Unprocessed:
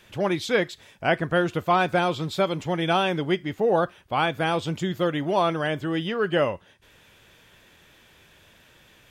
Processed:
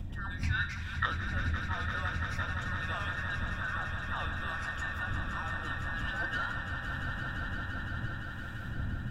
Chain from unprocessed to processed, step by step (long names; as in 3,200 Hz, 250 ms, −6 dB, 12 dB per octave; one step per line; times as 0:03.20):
frequency inversion band by band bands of 2,000 Hz
wind on the microphone 120 Hz −21 dBFS
convolution reverb, pre-delay 3 ms, DRR 9.5 dB
flanger 0.37 Hz, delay 9.4 ms, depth 6.1 ms, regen −79%
parametric band 420 Hz −13 dB 0.26 octaves
downward compressor 4 to 1, threshold −38 dBFS, peak gain reduction 25 dB
0:00.43–0:01.06: octave-band graphic EQ 125/500/1,000/2,000/4,000 Hz +11/−11/+10/+12/+8 dB
0:05.96–0:06.53: leveller curve on the samples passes 1
echo that builds up and dies away 171 ms, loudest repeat 5, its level −9.5 dB